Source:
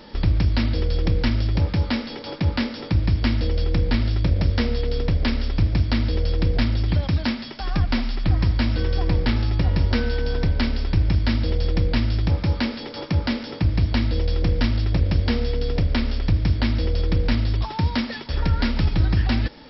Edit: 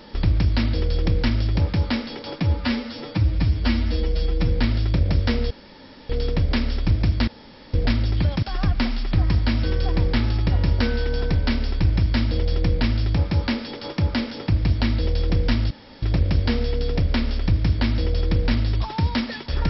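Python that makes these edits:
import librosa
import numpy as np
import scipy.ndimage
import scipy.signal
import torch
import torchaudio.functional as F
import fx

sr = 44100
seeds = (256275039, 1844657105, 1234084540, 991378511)

y = fx.edit(x, sr, fx.stretch_span(start_s=2.41, length_s=1.39, factor=1.5),
    fx.insert_room_tone(at_s=4.81, length_s=0.59),
    fx.room_tone_fill(start_s=5.99, length_s=0.46),
    fx.cut(start_s=7.14, length_s=0.41),
    fx.insert_room_tone(at_s=14.83, length_s=0.32), tone=tone)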